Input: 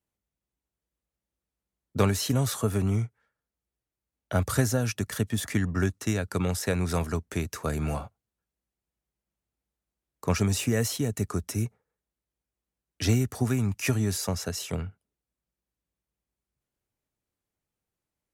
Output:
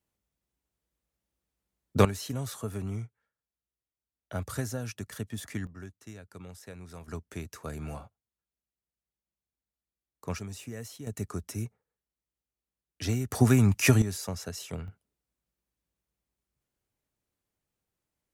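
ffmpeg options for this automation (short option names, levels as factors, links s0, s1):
-af "asetnsamples=n=441:p=0,asendcmd='2.05 volume volume -9dB;5.67 volume volume -18.5dB;7.08 volume volume -9dB;10.39 volume volume -15dB;11.07 volume volume -6dB;13.31 volume volume 5dB;14.02 volume volume -6dB;14.88 volume volume 1dB',volume=1.33"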